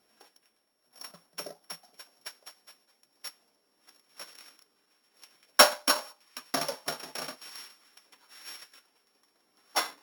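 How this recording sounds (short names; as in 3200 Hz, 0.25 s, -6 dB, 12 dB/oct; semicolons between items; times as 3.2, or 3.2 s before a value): a buzz of ramps at a fixed pitch in blocks of 8 samples; random-step tremolo; Opus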